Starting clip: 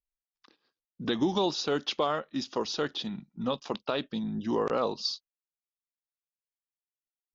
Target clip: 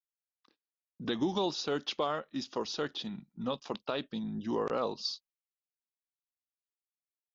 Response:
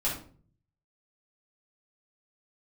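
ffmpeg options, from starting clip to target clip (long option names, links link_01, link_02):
-af "agate=range=-33dB:threshold=-55dB:ratio=3:detection=peak,volume=-4dB"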